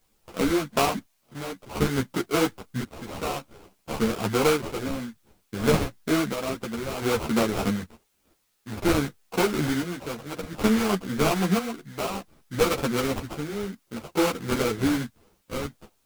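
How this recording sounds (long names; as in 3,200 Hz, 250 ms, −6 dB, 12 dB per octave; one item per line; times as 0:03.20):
aliases and images of a low sample rate 1,800 Hz, jitter 20%
chopped level 0.57 Hz, depth 60%, duty 60%
a quantiser's noise floor 12 bits, dither triangular
a shimmering, thickened sound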